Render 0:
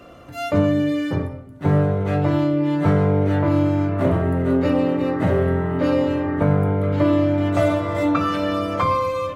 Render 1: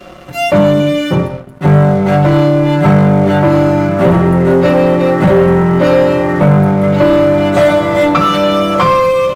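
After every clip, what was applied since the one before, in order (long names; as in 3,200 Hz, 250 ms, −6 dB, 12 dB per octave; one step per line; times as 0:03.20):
notch filter 450 Hz, Q 12
comb filter 5.4 ms, depth 73%
leveller curve on the samples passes 2
level +4 dB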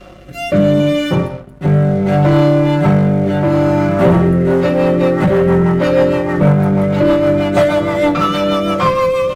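mains hum 50 Hz, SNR 31 dB
rotating-speaker cabinet horn 0.7 Hz, later 6.3 Hz, at 0:04.16
level −1 dB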